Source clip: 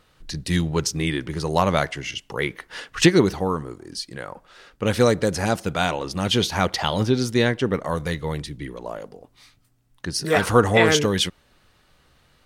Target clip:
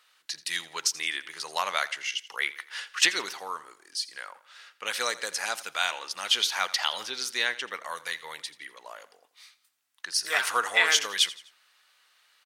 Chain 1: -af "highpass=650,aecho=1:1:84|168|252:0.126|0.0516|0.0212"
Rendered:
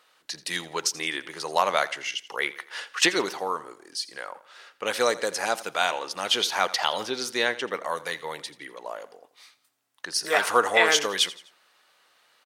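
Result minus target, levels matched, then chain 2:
500 Hz band +10.0 dB
-af "highpass=1400,aecho=1:1:84|168|252:0.126|0.0516|0.0212"

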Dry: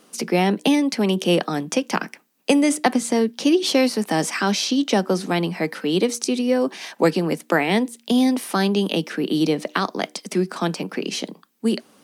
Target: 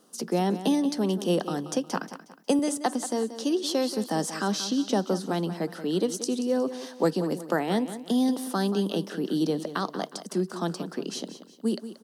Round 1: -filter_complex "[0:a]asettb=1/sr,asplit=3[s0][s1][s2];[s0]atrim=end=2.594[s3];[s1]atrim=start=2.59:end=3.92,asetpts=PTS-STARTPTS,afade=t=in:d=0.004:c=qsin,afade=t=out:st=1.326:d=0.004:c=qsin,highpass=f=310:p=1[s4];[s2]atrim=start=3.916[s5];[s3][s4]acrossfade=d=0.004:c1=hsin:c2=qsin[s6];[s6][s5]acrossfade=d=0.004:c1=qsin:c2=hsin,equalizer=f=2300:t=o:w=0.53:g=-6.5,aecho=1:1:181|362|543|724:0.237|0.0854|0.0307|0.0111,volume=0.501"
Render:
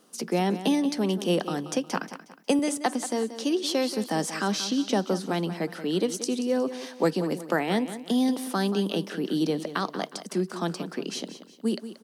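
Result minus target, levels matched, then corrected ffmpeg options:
2 kHz band +3.0 dB
-filter_complex "[0:a]asettb=1/sr,asplit=3[s0][s1][s2];[s0]atrim=end=2.594[s3];[s1]atrim=start=2.59:end=3.92,asetpts=PTS-STARTPTS,afade=t=in:d=0.004:c=qsin,afade=t=out:st=1.326:d=0.004:c=qsin,highpass=f=310:p=1[s4];[s2]atrim=start=3.916[s5];[s3][s4]acrossfade=d=0.004:c1=hsin:c2=qsin[s6];[s6][s5]acrossfade=d=0.004:c1=qsin:c2=hsin,equalizer=f=2300:t=o:w=0.53:g=-15.5,aecho=1:1:181|362|543|724:0.237|0.0854|0.0307|0.0111,volume=0.501"

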